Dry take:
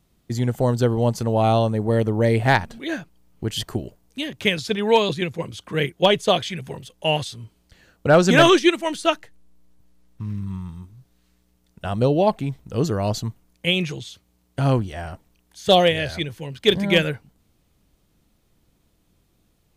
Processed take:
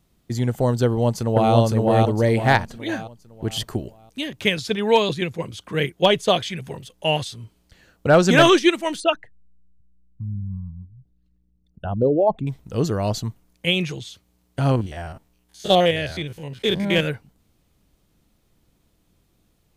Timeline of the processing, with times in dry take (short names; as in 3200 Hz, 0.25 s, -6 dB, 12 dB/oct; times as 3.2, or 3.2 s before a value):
0.85–1.54 echo throw 0.51 s, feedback 40%, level -1 dB
9–12.47 formant sharpening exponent 2
14.71–17.06 stepped spectrum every 50 ms